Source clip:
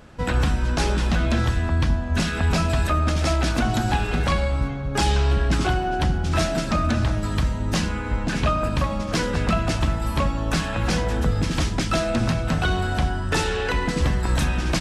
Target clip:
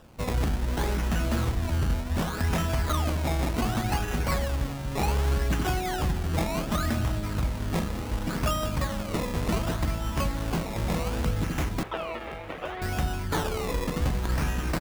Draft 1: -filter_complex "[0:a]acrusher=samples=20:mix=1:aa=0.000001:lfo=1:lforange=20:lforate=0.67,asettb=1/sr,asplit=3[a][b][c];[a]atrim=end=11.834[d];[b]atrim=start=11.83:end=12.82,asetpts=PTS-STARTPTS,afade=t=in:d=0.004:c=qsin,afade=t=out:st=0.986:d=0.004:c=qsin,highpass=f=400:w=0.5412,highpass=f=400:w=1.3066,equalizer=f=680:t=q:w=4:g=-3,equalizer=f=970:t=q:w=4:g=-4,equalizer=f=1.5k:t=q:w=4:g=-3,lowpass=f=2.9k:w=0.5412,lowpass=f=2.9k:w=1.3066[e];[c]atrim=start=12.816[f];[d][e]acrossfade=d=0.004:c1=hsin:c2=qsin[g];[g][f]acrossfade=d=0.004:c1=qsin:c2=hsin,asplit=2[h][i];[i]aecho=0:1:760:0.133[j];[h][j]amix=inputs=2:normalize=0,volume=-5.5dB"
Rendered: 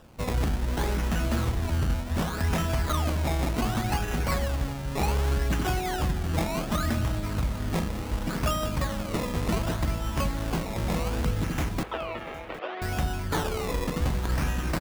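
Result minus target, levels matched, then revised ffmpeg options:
echo 0.311 s early
-filter_complex "[0:a]acrusher=samples=20:mix=1:aa=0.000001:lfo=1:lforange=20:lforate=0.67,asettb=1/sr,asplit=3[a][b][c];[a]atrim=end=11.834[d];[b]atrim=start=11.83:end=12.82,asetpts=PTS-STARTPTS,afade=t=in:d=0.004:c=qsin,afade=t=out:st=0.986:d=0.004:c=qsin,highpass=f=400:w=0.5412,highpass=f=400:w=1.3066,equalizer=f=680:t=q:w=4:g=-3,equalizer=f=970:t=q:w=4:g=-4,equalizer=f=1.5k:t=q:w=4:g=-3,lowpass=f=2.9k:w=0.5412,lowpass=f=2.9k:w=1.3066[e];[c]atrim=start=12.816[f];[d][e]acrossfade=d=0.004:c1=hsin:c2=qsin[g];[g][f]acrossfade=d=0.004:c1=qsin:c2=hsin,asplit=2[h][i];[i]aecho=0:1:1071:0.133[j];[h][j]amix=inputs=2:normalize=0,volume=-5.5dB"

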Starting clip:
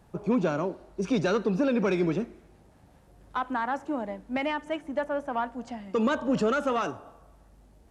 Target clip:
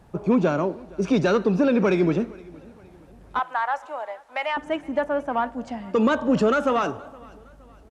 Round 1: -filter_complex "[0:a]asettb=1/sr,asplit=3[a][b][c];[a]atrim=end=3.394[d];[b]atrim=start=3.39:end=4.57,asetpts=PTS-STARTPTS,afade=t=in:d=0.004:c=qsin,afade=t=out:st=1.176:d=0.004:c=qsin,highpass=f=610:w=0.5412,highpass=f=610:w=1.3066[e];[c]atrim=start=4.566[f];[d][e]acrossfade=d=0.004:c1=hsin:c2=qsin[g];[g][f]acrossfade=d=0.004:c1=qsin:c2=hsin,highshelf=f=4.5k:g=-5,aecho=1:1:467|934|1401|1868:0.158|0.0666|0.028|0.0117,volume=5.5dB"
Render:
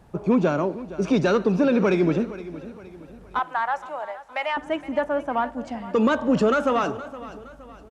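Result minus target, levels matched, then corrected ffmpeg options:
echo-to-direct +8 dB
-filter_complex "[0:a]asettb=1/sr,asplit=3[a][b][c];[a]atrim=end=3.394[d];[b]atrim=start=3.39:end=4.57,asetpts=PTS-STARTPTS,afade=t=in:d=0.004:c=qsin,afade=t=out:st=1.176:d=0.004:c=qsin,highpass=f=610:w=0.5412,highpass=f=610:w=1.3066[e];[c]atrim=start=4.566[f];[d][e]acrossfade=d=0.004:c1=hsin:c2=qsin[g];[g][f]acrossfade=d=0.004:c1=qsin:c2=hsin,highshelf=f=4.5k:g=-5,aecho=1:1:467|934|1401:0.0631|0.0265|0.0111,volume=5.5dB"

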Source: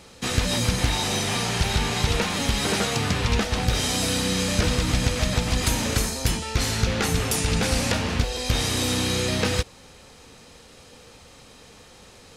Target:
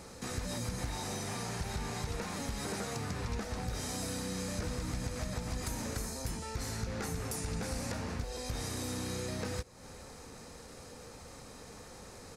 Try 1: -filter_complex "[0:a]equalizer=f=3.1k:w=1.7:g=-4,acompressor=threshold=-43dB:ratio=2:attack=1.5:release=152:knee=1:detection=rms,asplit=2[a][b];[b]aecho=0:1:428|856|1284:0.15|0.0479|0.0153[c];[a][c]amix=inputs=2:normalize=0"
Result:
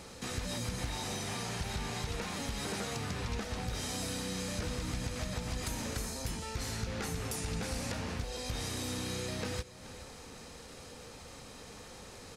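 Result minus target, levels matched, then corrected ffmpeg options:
echo-to-direct +8.5 dB; 4000 Hz band +3.0 dB
-filter_complex "[0:a]equalizer=f=3.1k:w=1.7:g=-11,acompressor=threshold=-43dB:ratio=2:attack=1.5:release=152:knee=1:detection=rms,asplit=2[a][b];[b]aecho=0:1:428|856:0.0562|0.018[c];[a][c]amix=inputs=2:normalize=0"

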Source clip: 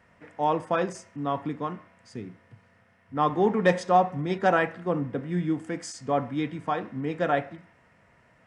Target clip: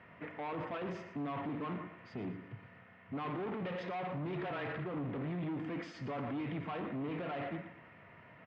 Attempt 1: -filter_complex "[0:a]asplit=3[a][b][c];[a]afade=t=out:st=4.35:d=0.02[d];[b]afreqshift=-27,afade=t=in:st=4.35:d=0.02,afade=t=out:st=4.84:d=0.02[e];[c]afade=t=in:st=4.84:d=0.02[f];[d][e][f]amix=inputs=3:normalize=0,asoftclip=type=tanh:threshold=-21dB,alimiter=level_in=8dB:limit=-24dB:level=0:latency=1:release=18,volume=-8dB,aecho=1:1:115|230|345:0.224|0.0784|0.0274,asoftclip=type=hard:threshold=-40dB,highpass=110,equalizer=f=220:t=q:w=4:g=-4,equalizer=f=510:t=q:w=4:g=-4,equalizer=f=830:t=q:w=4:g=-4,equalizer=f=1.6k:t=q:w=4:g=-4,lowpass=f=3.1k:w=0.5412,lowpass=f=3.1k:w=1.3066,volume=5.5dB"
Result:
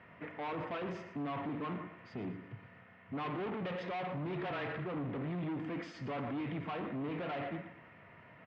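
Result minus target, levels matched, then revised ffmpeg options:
soft clip: distortion +9 dB
-filter_complex "[0:a]asplit=3[a][b][c];[a]afade=t=out:st=4.35:d=0.02[d];[b]afreqshift=-27,afade=t=in:st=4.35:d=0.02,afade=t=out:st=4.84:d=0.02[e];[c]afade=t=in:st=4.84:d=0.02[f];[d][e][f]amix=inputs=3:normalize=0,asoftclip=type=tanh:threshold=-12.5dB,alimiter=level_in=8dB:limit=-24dB:level=0:latency=1:release=18,volume=-8dB,aecho=1:1:115|230|345:0.224|0.0784|0.0274,asoftclip=type=hard:threshold=-40dB,highpass=110,equalizer=f=220:t=q:w=4:g=-4,equalizer=f=510:t=q:w=4:g=-4,equalizer=f=830:t=q:w=4:g=-4,equalizer=f=1.6k:t=q:w=4:g=-4,lowpass=f=3.1k:w=0.5412,lowpass=f=3.1k:w=1.3066,volume=5.5dB"

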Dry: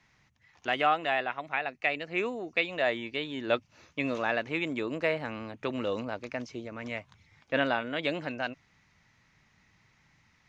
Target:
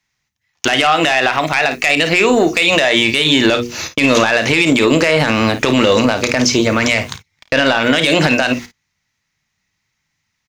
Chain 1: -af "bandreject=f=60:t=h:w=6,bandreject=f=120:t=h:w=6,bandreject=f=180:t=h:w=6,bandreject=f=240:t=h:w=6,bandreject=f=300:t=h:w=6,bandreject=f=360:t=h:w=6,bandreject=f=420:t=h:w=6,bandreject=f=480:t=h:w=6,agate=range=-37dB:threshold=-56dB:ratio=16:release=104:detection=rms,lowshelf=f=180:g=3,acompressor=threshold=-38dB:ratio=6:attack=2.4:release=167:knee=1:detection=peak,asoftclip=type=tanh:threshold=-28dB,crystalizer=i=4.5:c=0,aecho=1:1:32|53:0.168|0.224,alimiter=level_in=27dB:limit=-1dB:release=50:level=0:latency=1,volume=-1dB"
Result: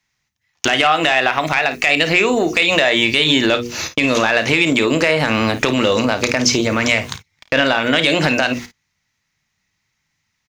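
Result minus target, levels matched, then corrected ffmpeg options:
compressor: peak gain reduction +5 dB
-af "bandreject=f=60:t=h:w=6,bandreject=f=120:t=h:w=6,bandreject=f=180:t=h:w=6,bandreject=f=240:t=h:w=6,bandreject=f=300:t=h:w=6,bandreject=f=360:t=h:w=6,bandreject=f=420:t=h:w=6,bandreject=f=480:t=h:w=6,agate=range=-37dB:threshold=-56dB:ratio=16:release=104:detection=rms,lowshelf=f=180:g=3,acompressor=threshold=-32dB:ratio=6:attack=2.4:release=167:knee=1:detection=peak,asoftclip=type=tanh:threshold=-28dB,crystalizer=i=4.5:c=0,aecho=1:1:32|53:0.168|0.224,alimiter=level_in=27dB:limit=-1dB:release=50:level=0:latency=1,volume=-1dB"

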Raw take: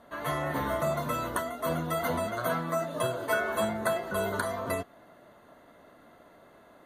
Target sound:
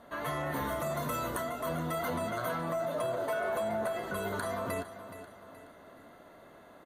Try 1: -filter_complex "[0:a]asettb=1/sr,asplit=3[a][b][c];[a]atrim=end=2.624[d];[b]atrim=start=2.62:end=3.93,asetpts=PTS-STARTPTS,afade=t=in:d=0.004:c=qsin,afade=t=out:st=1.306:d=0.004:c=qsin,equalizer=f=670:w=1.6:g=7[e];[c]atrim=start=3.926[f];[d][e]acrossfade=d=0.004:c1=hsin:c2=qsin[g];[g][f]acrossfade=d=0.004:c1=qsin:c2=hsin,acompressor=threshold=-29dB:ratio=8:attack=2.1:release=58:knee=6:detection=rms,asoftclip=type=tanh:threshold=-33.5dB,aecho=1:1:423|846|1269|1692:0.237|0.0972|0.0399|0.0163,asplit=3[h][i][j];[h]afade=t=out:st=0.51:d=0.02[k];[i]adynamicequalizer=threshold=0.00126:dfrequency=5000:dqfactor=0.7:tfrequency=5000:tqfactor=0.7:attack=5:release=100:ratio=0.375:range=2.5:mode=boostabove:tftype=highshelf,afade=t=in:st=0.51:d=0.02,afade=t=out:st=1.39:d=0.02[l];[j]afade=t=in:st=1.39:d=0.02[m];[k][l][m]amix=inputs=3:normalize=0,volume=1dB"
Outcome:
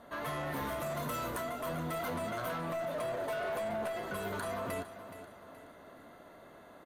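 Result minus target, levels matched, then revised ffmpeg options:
soft clip: distortion +13 dB
-filter_complex "[0:a]asettb=1/sr,asplit=3[a][b][c];[a]atrim=end=2.624[d];[b]atrim=start=2.62:end=3.93,asetpts=PTS-STARTPTS,afade=t=in:d=0.004:c=qsin,afade=t=out:st=1.306:d=0.004:c=qsin,equalizer=f=670:w=1.6:g=7[e];[c]atrim=start=3.926[f];[d][e]acrossfade=d=0.004:c1=hsin:c2=qsin[g];[g][f]acrossfade=d=0.004:c1=qsin:c2=hsin,acompressor=threshold=-29dB:ratio=8:attack=2.1:release=58:knee=6:detection=rms,asoftclip=type=tanh:threshold=-24dB,aecho=1:1:423|846|1269|1692:0.237|0.0972|0.0399|0.0163,asplit=3[h][i][j];[h]afade=t=out:st=0.51:d=0.02[k];[i]adynamicequalizer=threshold=0.00126:dfrequency=5000:dqfactor=0.7:tfrequency=5000:tqfactor=0.7:attack=5:release=100:ratio=0.375:range=2.5:mode=boostabove:tftype=highshelf,afade=t=in:st=0.51:d=0.02,afade=t=out:st=1.39:d=0.02[l];[j]afade=t=in:st=1.39:d=0.02[m];[k][l][m]amix=inputs=3:normalize=0,volume=1dB"

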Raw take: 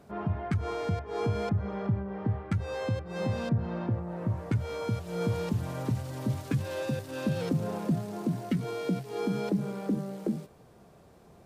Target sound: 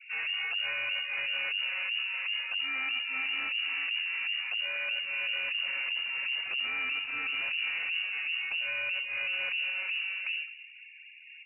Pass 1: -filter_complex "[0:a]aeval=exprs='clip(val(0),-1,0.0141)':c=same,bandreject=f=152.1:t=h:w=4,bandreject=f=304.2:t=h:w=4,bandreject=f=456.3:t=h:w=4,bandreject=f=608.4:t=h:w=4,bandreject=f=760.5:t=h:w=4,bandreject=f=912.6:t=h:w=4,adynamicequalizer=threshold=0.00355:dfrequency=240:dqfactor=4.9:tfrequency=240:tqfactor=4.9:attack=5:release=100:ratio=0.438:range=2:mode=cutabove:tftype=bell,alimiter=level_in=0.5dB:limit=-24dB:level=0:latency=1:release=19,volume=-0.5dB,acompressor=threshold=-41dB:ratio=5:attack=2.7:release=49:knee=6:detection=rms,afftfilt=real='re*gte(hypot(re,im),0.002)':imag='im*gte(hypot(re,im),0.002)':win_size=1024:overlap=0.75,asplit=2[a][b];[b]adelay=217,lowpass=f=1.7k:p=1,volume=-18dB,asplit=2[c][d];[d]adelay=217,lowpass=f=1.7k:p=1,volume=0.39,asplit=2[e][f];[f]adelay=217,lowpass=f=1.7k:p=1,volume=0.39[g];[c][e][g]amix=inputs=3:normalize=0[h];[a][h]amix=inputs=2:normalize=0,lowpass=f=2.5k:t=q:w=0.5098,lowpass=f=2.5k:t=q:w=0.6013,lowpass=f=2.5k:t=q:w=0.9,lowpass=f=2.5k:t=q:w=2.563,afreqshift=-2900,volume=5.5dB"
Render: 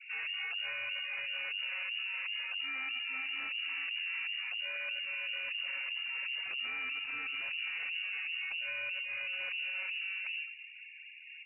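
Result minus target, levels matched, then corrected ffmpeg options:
compressor: peak gain reduction +6 dB
-filter_complex "[0:a]aeval=exprs='clip(val(0),-1,0.0141)':c=same,bandreject=f=152.1:t=h:w=4,bandreject=f=304.2:t=h:w=4,bandreject=f=456.3:t=h:w=4,bandreject=f=608.4:t=h:w=4,bandreject=f=760.5:t=h:w=4,bandreject=f=912.6:t=h:w=4,adynamicequalizer=threshold=0.00355:dfrequency=240:dqfactor=4.9:tfrequency=240:tqfactor=4.9:attack=5:release=100:ratio=0.438:range=2:mode=cutabove:tftype=bell,alimiter=level_in=0.5dB:limit=-24dB:level=0:latency=1:release=19,volume=-0.5dB,acompressor=threshold=-33.5dB:ratio=5:attack=2.7:release=49:knee=6:detection=rms,afftfilt=real='re*gte(hypot(re,im),0.002)':imag='im*gte(hypot(re,im),0.002)':win_size=1024:overlap=0.75,asplit=2[a][b];[b]adelay=217,lowpass=f=1.7k:p=1,volume=-18dB,asplit=2[c][d];[d]adelay=217,lowpass=f=1.7k:p=1,volume=0.39,asplit=2[e][f];[f]adelay=217,lowpass=f=1.7k:p=1,volume=0.39[g];[c][e][g]amix=inputs=3:normalize=0[h];[a][h]amix=inputs=2:normalize=0,lowpass=f=2.5k:t=q:w=0.5098,lowpass=f=2.5k:t=q:w=0.6013,lowpass=f=2.5k:t=q:w=0.9,lowpass=f=2.5k:t=q:w=2.563,afreqshift=-2900,volume=5.5dB"

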